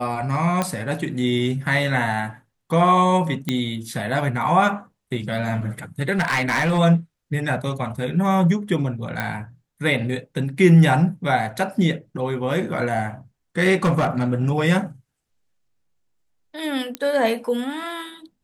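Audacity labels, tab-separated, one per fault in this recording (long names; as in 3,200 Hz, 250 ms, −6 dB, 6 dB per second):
0.620000	0.620000	click −8 dBFS
3.490000	3.490000	click −9 dBFS
6.120000	6.790000	clipping −16 dBFS
9.200000	9.200000	click −11 dBFS
13.840000	14.240000	clipping −14.5 dBFS
16.950000	16.950000	click −11 dBFS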